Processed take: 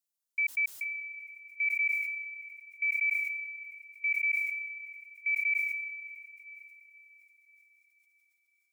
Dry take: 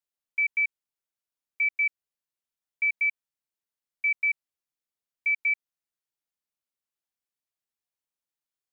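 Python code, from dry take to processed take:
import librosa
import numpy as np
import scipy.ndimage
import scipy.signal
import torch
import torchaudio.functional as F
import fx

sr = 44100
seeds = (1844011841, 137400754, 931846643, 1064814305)

y = fx.bass_treble(x, sr, bass_db=-2, treble_db=11)
y = fx.echo_diffused(y, sr, ms=583, feedback_pct=46, wet_db=-13)
y = fx.sustainer(y, sr, db_per_s=32.0)
y = y * librosa.db_to_amplitude(-5.5)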